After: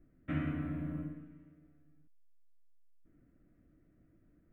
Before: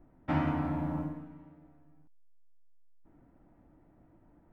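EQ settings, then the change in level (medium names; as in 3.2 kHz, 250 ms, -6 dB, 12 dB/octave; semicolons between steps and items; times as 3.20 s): static phaser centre 2.1 kHz, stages 4; -4.0 dB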